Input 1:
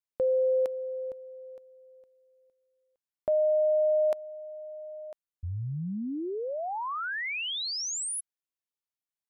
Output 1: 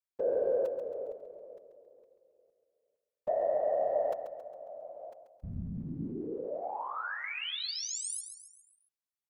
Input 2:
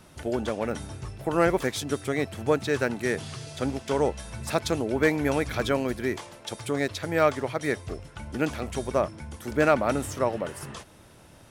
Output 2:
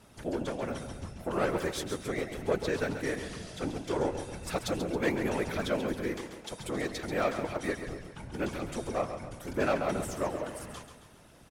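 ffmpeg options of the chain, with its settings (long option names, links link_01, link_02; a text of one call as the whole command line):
ffmpeg -i in.wav -af "asoftclip=type=tanh:threshold=-15.5dB,afftfilt=real='hypot(re,im)*cos(2*PI*random(0))':imag='hypot(re,im)*sin(2*PI*random(1))':win_size=512:overlap=0.75,aecho=1:1:136|272|408|544|680:0.355|0.167|0.0784|0.0368|0.0173,volume=1dB" out.wav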